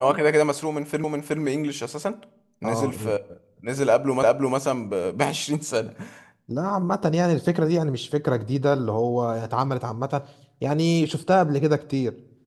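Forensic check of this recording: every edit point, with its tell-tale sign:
1.04 repeat of the last 0.37 s
4.23 repeat of the last 0.35 s

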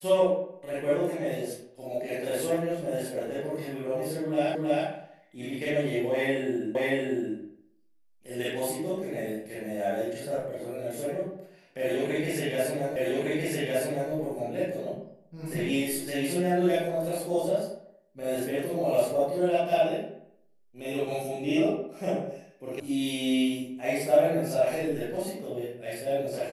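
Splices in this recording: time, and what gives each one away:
4.55 repeat of the last 0.32 s
6.75 repeat of the last 0.63 s
12.96 repeat of the last 1.16 s
22.8 sound cut off

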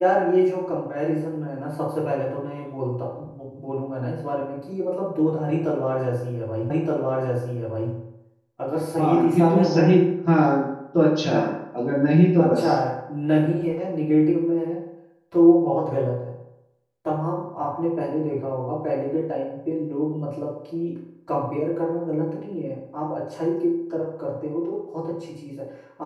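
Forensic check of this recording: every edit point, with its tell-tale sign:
6.7 repeat of the last 1.22 s

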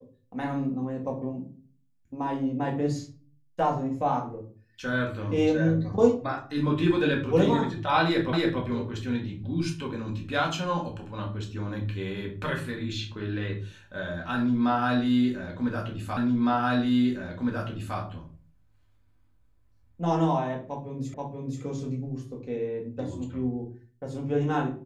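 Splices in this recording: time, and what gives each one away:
8.33 repeat of the last 0.28 s
16.17 repeat of the last 1.81 s
21.14 repeat of the last 0.48 s

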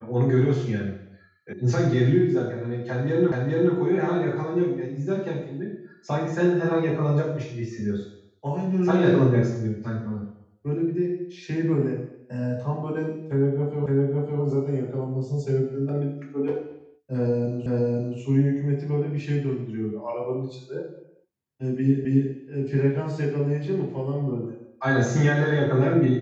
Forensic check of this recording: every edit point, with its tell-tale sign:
1.53 sound cut off
3.32 repeat of the last 0.42 s
13.86 repeat of the last 0.56 s
17.66 repeat of the last 0.52 s
22.05 repeat of the last 0.27 s

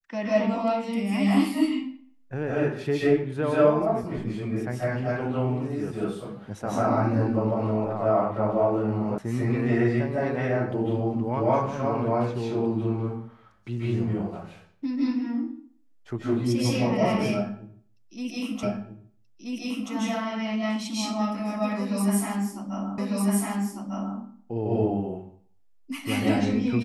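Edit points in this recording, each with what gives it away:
9.18 sound cut off
18.63 repeat of the last 1.28 s
22.98 repeat of the last 1.2 s

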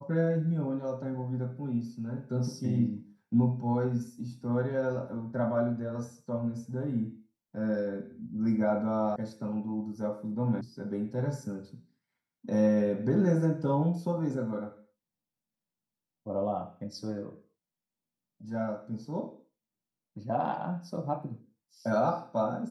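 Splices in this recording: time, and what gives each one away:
9.16 sound cut off
10.61 sound cut off

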